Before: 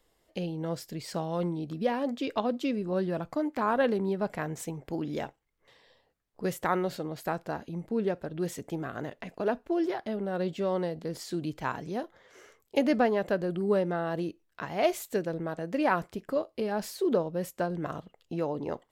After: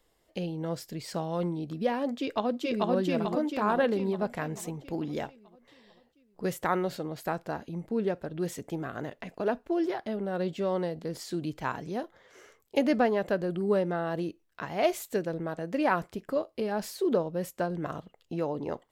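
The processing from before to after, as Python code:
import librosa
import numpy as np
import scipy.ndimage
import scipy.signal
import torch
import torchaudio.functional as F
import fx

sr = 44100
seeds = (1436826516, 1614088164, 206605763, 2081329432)

y = fx.echo_throw(x, sr, start_s=2.21, length_s=0.7, ms=440, feedback_pct=55, wet_db=0.0)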